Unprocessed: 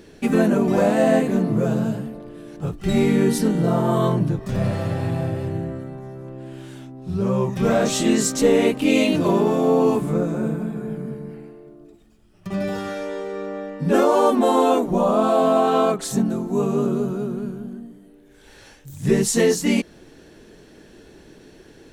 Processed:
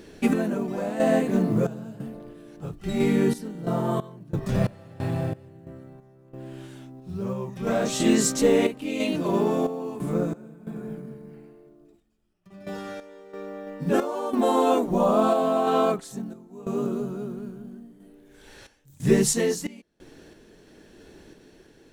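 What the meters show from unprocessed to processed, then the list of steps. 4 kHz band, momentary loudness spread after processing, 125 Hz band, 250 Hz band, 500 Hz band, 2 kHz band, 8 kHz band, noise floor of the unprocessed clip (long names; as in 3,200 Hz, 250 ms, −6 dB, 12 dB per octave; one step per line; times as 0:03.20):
−5.0 dB, 19 LU, −6.0 dB, −5.5 dB, −5.5 dB, −5.5 dB, −3.0 dB, −49 dBFS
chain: log-companded quantiser 8 bits
mains-hum notches 50/100/150 Hz
sample-and-hold tremolo 3 Hz, depth 95%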